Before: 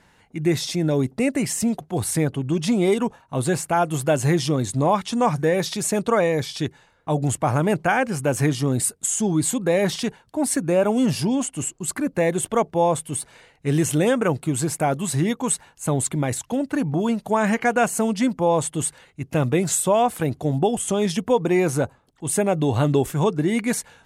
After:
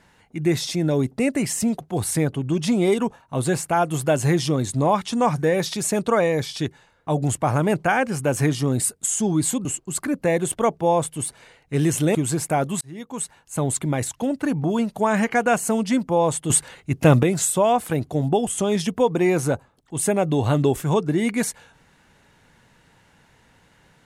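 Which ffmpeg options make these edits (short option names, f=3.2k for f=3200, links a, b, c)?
-filter_complex "[0:a]asplit=6[a][b][c][d][e][f];[a]atrim=end=9.652[g];[b]atrim=start=11.578:end=14.082[h];[c]atrim=start=14.448:end=15.11,asetpts=PTS-STARTPTS,afade=t=out:st=0.658:d=0.004:c=hsin[i];[d]atrim=start=15.11:end=18.802,asetpts=PTS-STARTPTS,afade=t=in:d=1.2:c=qsin[j];[e]atrim=start=18.798:end=19.532,asetpts=PTS-STARTPTS,volume=7dB[k];[f]atrim=start=19.528[l];[g][h]acrossfade=d=0.004:c1=hsin:c2=hsin[m];[i][j]concat=n=2:v=0:a=1[n];[m][n]acrossfade=d=0.004:c1=hsin:c2=hsin[o];[o][k]acrossfade=d=0.004:c1=hsin:c2=hsin[p];[p][l]acrossfade=d=0.004:c1=hsin:c2=hsin"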